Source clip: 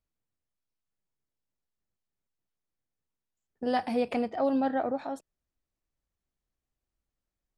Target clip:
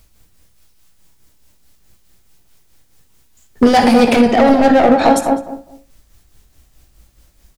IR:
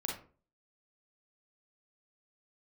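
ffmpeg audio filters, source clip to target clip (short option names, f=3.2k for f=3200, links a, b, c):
-filter_complex "[0:a]highshelf=f=2.3k:g=8,asoftclip=type=tanh:threshold=-24.5dB,lowshelf=f=100:g=9.5,acompressor=threshold=-34dB:ratio=4,asoftclip=type=hard:threshold=-33dB,asplit=2[a][b];[b]adelay=205,lowpass=f=820:p=1,volume=-5dB,asplit=2[c][d];[d]adelay=205,lowpass=f=820:p=1,volume=0.26,asplit=2[e][f];[f]adelay=205,lowpass=f=820:p=1,volume=0.26[g];[a][c][e][g]amix=inputs=4:normalize=0,asplit=2[h][i];[1:a]atrim=start_sample=2205,atrim=end_sample=6174,adelay=17[j];[i][j]afir=irnorm=-1:irlink=0,volume=-7.5dB[k];[h][k]amix=inputs=2:normalize=0,tremolo=f=4.7:d=0.48,alimiter=level_in=30.5dB:limit=-1dB:release=50:level=0:latency=1,volume=-1dB"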